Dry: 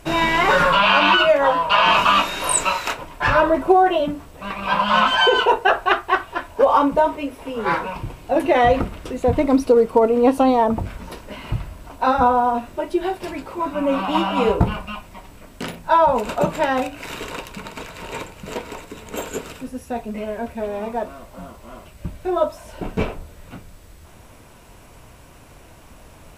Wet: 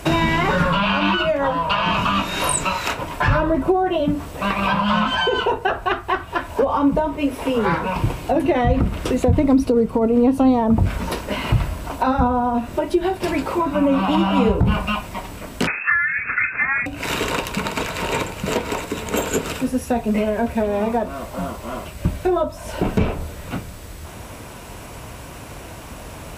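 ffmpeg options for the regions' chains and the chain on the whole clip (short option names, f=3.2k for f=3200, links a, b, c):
-filter_complex "[0:a]asettb=1/sr,asplit=3[a][b][c];[a]atrim=end=15.674[d];[b]atrim=start=15.67:end=16.86,asetpts=PTS-STARTPTS,afade=t=in:d=0.004:c=qsin,afade=t=out:st=1.186:d=0.004:c=qsin,lowpass=f=2.3k:t=q:w=0.5098,lowpass=f=2.3k:t=q:w=0.6013,lowpass=f=2.3k:t=q:w=0.9,lowpass=f=2.3k:t=q:w=2.563,afreqshift=-2700,equalizer=f=1.5k:t=o:w=0.54:g=14[e];[c]atrim=start=16.856[f];[d][e]acrossfade=d=0.004:c1=hsin:c2=qsin[g];[g][f]acrossfade=d=0.004:c1=qsin:c2=hsin,acrossover=split=230[h][i];[i]acompressor=threshold=-29dB:ratio=8[j];[h][j]amix=inputs=2:normalize=0,highpass=41,alimiter=level_in=16.5dB:limit=-1dB:release=50:level=0:latency=1,volume=-6dB"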